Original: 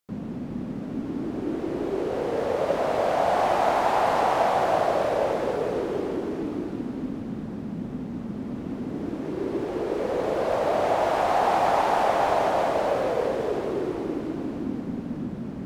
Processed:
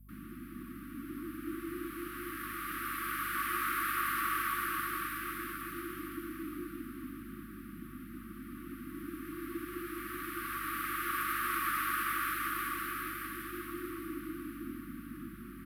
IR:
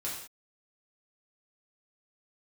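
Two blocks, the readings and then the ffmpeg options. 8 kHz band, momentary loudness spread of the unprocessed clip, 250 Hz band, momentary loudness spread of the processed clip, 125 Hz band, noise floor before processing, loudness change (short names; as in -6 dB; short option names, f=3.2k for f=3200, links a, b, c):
+1.5 dB, 11 LU, -11.5 dB, 14 LU, -14.5 dB, -35 dBFS, -11.5 dB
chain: -filter_complex "[0:a]acrossover=split=420 2400:gain=0.112 1 0.0794[a][b][c];[a][b][c]amix=inputs=3:normalize=0,afftfilt=real='re*(1-between(b*sr/4096,360,1100))':imag='im*(1-between(b*sr/4096,360,1100))':win_size=4096:overlap=0.75,acrossover=split=230|450|2500[d][e][f][g];[g]crystalizer=i=3:c=0[h];[d][e][f][h]amix=inputs=4:normalize=0,aeval=exprs='val(0)+0.002*(sin(2*PI*50*n/s)+sin(2*PI*2*50*n/s)/2+sin(2*PI*3*50*n/s)/3+sin(2*PI*4*50*n/s)/4+sin(2*PI*5*50*n/s)/5)':c=same,aexciter=amount=10.8:drive=8.6:freq=10k,aresample=32000,aresample=44100"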